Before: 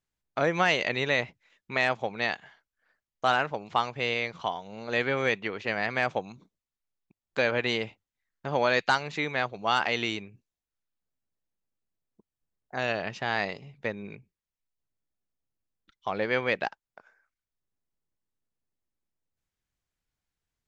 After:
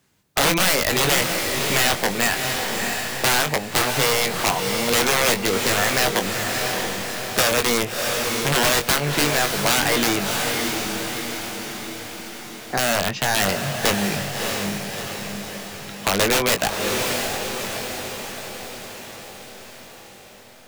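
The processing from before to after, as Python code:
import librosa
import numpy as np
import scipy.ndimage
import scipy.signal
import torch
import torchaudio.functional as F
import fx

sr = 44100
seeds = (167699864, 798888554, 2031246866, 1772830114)

p1 = scipy.signal.sosfilt(scipy.signal.butter(2, 130.0, 'highpass', fs=sr, output='sos'), x)
p2 = fx.low_shelf(p1, sr, hz=280.0, db=7.5)
p3 = fx.rider(p2, sr, range_db=10, speed_s=2.0)
p4 = p2 + (p3 * 10.0 ** (0.0 / 20.0))
p5 = (np.mod(10.0 ** (13.5 / 20.0) * p4 + 1.0, 2.0) - 1.0) / 10.0 ** (13.5 / 20.0)
p6 = fx.doubler(p5, sr, ms=21.0, db=-7)
p7 = fx.echo_diffused(p6, sr, ms=649, feedback_pct=46, wet_db=-6)
p8 = fx.band_squash(p7, sr, depth_pct=40)
y = p8 * 10.0 ** (2.0 / 20.0)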